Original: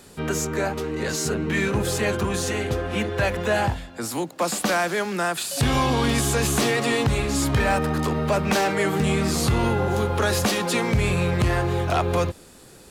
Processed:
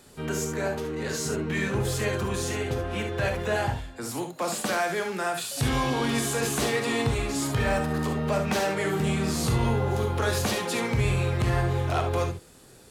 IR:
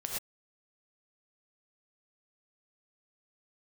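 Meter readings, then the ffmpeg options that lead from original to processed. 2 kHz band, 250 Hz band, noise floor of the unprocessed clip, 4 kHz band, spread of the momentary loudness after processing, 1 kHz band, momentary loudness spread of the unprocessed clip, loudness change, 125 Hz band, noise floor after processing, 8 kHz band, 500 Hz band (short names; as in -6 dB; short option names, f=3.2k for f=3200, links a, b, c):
-4.5 dB, -4.5 dB, -47 dBFS, -4.5 dB, 5 LU, -4.5 dB, 5 LU, -4.0 dB, -2.5 dB, -51 dBFS, -4.5 dB, -4.0 dB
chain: -filter_complex "[1:a]atrim=start_sample=2205,atrim=end_sample=3528[a];[0:a][a]afir=irnorm=-1:irlink=0,volume=-4dB"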